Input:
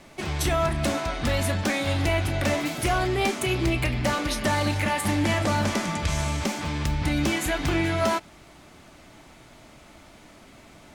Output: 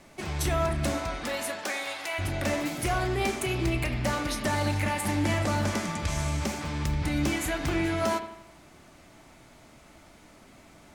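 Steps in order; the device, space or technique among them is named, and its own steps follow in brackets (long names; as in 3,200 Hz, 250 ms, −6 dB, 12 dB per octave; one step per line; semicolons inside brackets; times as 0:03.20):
exciter from parts (in parallel at −11 dB: high-pass filter 3,000 Hz 24 dB per octave + soft clipping −23 dBFS, distortion −20 dB)
0:01.19–0:02.18: on the sum: high-pass filter 280 Hz → 940 Hz 12 dB per octave
bucket-brigade delay 82 ms, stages 2,048, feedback 48%, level −11 dB
level −4 dB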